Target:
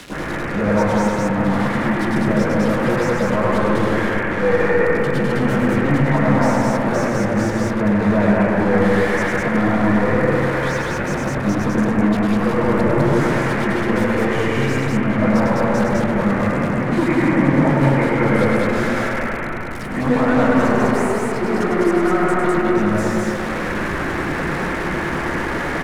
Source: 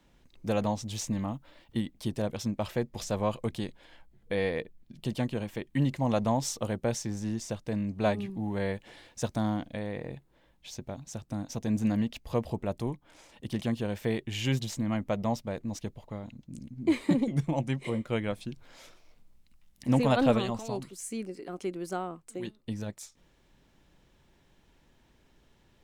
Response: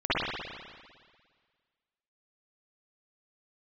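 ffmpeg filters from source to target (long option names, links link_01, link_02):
-filter_complex "[0:a]aeval=exprs='val(0)+0.5*0.0251*sgn(val(0))':channel_layout=same,equalizer=frequency=730:width_type=o:width=1.6:gain=-8,aecho=1:1:102|204.1:0.355|0.708,asplit=2[link_01][link_02];[link_02]highpass=frequency=720:poles=1,volume=35dB,asoftclip=type=tanh:threshold=-11.5dB[link_03];[link_01][link_03]amix=inputs=2:normalize=0,lowpass=frequency=5300:poles=1,volume=-6dB[link_04];[1:a]atrim=start_sample=2205,asetrate=22932,aresample=44100[link_05];[link_04][link_05]afir=irnorm=-1:irlink=0,volume=-17.5dB"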